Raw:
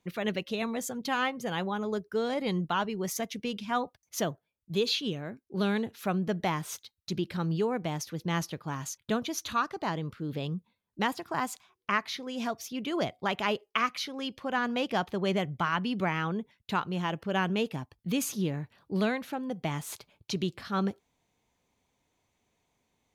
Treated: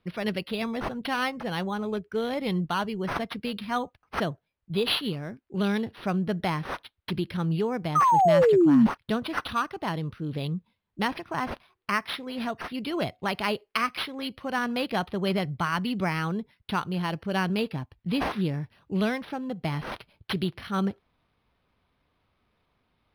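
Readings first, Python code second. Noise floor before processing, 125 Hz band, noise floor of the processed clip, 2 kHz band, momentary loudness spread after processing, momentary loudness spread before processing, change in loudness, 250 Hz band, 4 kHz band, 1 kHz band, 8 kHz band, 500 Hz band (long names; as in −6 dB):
−81 dBFS, +3.5 dB, −78 dBFS, +2.0 dB, 10 LU, 7 LU, +4.0 dB, +4.5 dB, +2.0 dB, +4.5 dB, −8.5 dB, +4.5 dB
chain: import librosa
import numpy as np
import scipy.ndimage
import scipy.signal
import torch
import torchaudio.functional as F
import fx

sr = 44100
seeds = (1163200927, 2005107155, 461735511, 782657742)

y = scipy.signal.sosfilt(scipy.signal.butter(4, 9000.0, 'lowpass', fs=sr, output='sos'), x)
y = fx.high_shelf(y, sr, hz=2800.0, db=10.5)
y = fx.spec_paint(y, sr, seeds[0], shape='fall', start_s=7.95, length_s=0.92, low_hz=210.0, high_hz=1300.0, level_db=-19.0)
y = fx.low_shelf(y, sr, hz=120.0, db=10.5)
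y = np.interp(np.arange(len(y)), np.arange(len(y))[::6], y[::6])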